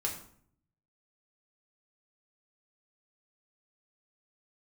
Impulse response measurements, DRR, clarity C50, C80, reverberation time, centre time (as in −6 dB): −1.5 dB, 8.0 dB, 11.0 dB, 0.60 s, 23 ms